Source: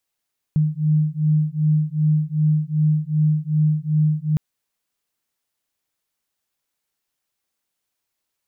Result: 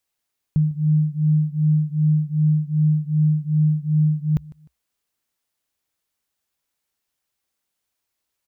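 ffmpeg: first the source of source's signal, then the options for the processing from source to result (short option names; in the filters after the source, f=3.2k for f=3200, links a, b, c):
-f lavfi -i "aevalsrc='0.112*(sin(2*PI*152*t)+sin(2*PI*154.6*t))':d=3.81:s=44100"
-af "equalizer=f=65:t=o:w=0.36:g=6.5,aecho=1:1:152|304:0.0891|0.0294"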